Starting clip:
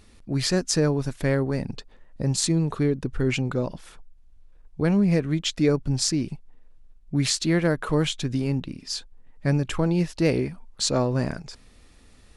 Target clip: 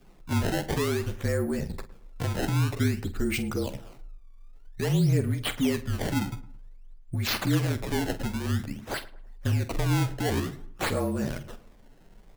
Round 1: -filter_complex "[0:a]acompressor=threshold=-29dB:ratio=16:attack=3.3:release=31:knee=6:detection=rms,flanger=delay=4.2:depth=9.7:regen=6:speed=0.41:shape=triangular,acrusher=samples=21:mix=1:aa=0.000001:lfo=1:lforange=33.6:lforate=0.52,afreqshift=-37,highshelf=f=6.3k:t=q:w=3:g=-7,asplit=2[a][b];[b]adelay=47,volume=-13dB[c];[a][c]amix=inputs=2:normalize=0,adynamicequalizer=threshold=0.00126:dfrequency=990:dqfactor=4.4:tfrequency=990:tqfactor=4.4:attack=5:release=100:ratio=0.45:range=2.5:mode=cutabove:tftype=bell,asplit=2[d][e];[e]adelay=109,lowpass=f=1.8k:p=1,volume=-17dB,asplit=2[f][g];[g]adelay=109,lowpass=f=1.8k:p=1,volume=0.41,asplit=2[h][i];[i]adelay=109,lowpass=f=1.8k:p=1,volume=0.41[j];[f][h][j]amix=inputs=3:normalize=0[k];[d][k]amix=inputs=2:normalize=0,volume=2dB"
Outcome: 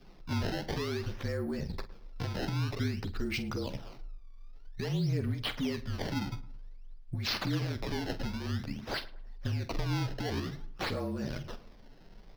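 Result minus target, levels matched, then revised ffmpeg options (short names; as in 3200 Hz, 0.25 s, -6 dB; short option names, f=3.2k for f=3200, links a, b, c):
compressor: peak gain reduction +8.5 dB; 8000 Hz band -5.0 dB
-filter_complex "[0:a]acompressor=threshold=-20dB:ratio=16:attack=3.3:release=31:knee=6:detection=rms,flanger=delay=4.2:depth=9.7:regen=6:speed=0.41:shape=triangular,acrusher=samples=21:mix=1:aa=0.000001:lfo=1:lforange=33.6:lforate=0.52,afreqshift=-37,asplit=2[a][b];[b]adelay=47,volume=-13dB[c];[a][c]amix=inputs=2:normalize=0,adynamicequalizer=threshold=0.00126:dfrequency=990:dqfactor=4.4:tfrequency=990:tqfactor=4.4:attack=5:release=100:ratio=0.45:range=2.5:mode=cutabove:tftype=bell,asplit=2[d][e];[e]adelay=109,lowpass=f=1.8k:p=1,volume=-17dB,asplit=2[f][g];[g]adelay=109,lowpass=f=1.8k:p=1,volume=0.41,asplit=2[h][i];[i]adelay=109,lowpass=f=1.8k:p=1,volume=0.41[j];[f][h][j]amix=inputs=3:normalize=0[k];[d][k]amix=inputs=2:normalize=0,volume=2dB"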